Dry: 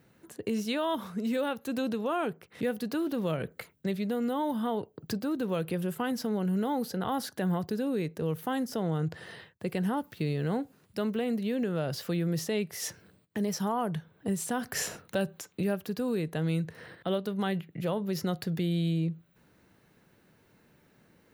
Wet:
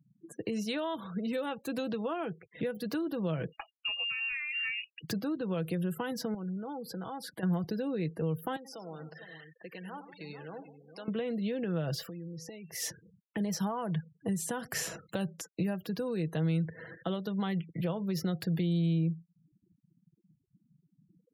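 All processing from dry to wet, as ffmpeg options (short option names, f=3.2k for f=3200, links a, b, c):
-filter_complex "[0:a]asettb=1/sr,asplit=3[a][b][c];[a]atrim=end=3.524[d];[b]atrim=start=3.52:end=5.01,asetpts=PTS-STARTPTS,afade=t=in:d=0.004:c=qsin,afade=t=out:st=1.486:d=0.004:c=qsin,equalizer=f=450:w=1.1:g=-6.5,aecho=1:1:1.7:0.43,atrim=end_sample=65709,lowpass=f=2.6k:t=q:w=0.5098,lowpass=f=2.6k:t=q:w=0.6013,lowpass=f=2.6k:t=q:w=0.9,lowpass=f=2.6k:t=q:w=2.563,afreqshift=-3000[e];[c]atrim=start=5.006[f];[d][e]acrossfade=d=0.004:c1=hsin:c2=qsin[g];[g][f]acrossfade=d=0.004:c1=qsin:c2=hsin,asettb=1/sr,asplit=3[h][i][j];[h]atrim=end=6.344[k];[i]atrim=start=6.34:end=7.43,asetpts=PTS-STARTPTS,afade=t=in:d=0.004:c=qsin,afade=t=out:st=1.086:d=0.004:c=qsin,equalizer=f=6.1k:w=4.1:g=-4,acompressor=threshold=-39dB:ratio=3:attack=3.2:release=140:knee=1:detection=peak[l];[j]atrim=start=7.426[m];[k][l]acrossfade=d=0.004:c1=hsin:c2=qsin[n];[n][m]acrossfade=d=0.004:c1=qsin:c2=hsin,asettb=1/sr,asplit=3[o][p][q];[o]atrim=end=8.564[r];[p]atrim=start=8.56:end=11.08,asetpts=PTS-STARTPTS,afade=t=in:d=0.004:c=qsin,afade=t=out:st=2.516:d=0.004:c=qsin,highpass=f=870:p=1,acompressor=threshold=-52dB:ratio=1.5:attack=3.2:release=140:knee=1:detection=peak,aecho=1:1:87|98|165|315|439:0.237|0.178|0.168|0.119|0.299,atrim=end_sample=111132[s];[q]atrim=start=11.076[t];[r][s]acrossfade=d=0.004:c1=hsin:c2=qsin[u];[u][t]acrossfade=d=0.004:c1=qsin:c2=hsin,asettb=1/sr,asplit=3[v][w][x];[v]atrim=end=12.064[y];[w]atrim=start=12.06:end=12.75,asetpts=PTS-STARTPTS,afade=t=in:d=0.004:c=qsin,afade=t=out:st=0.686:d=0.004:c=qsin,bandreject=f=246.4:t=h:w=4,bandreject=f=492.8:t=h:w=4,bandreject=f=739.2:t=h:w=4,bandreject=f=985.6:t=h:w=4,bandreject=f=1.232k:t=h:w=4,bandreject=f=1.4784k:t=h:w=4,bandreject=f=1.7248k:t=h:w=4,bandreject=f=1.9712k:t=h:w=4,bandreject=f=2.2176k:t=h:w=4,bandreject=f=2.464k:t=h:w=4,bandreject=f=2.7104k:t=h:w=4,bandreject=f=2.9568k:t=h:w=4,bandreject=f=3.2032k:t=h:w=4,bandreject=f=3.4496k:t=h:w=4,bandreject=f=3.696k:t=h:w=4,bandreject=f=3.9424k:t=h:w=4,bandreject=f=4.1888k:t=h:w=4,bandreject=f=4.4352k:t=h:w=4,bandreject=f=4.6816k:t=h:w=4,bandreject=f=4.928k:t=h:w=4,bandreject=f=5.1744k:t=h:w=4,bandreject=f=5.4208k:t=h:w=4,bandreject=f=5.6672k:t=h:w=4,bandreject=f=5.9136k:t=h:w=4,bandreject=f=6.16k:t=h:w=4,bandreject=f=6.4064k:t=h:w=4,bandreject=f=6.6528k:t=h:w=4,bandreject=f=6.8992k:t=h:w=4,bandreject=f=7.1456k:t=h:w=4,acompressor=threshold=-41dB:ratio=12:attack=3.2:release=140:knee=1:detection=peak[z];[x]atrim=start=12.746[aa];[y][z]acrossfade=d=0.004:c1=hsin:c2=qsin[ab];[ab][aa]acrossfade=d=0.004:c1=qsin:c2=hsin,afftfilt=real='re*gte(hypot(re,im),0.00447)':imag='im*gte(hypot(re,im),0.00447)':win_size=1024:overlap=0.75,aecho=1:1:6.1:0.44,acrossover=split=150[ac][ad];[ad]acompressor=threshold=-31dB:ratio=6[ae];[ac][ae]amix=inputs=2:normalize=0"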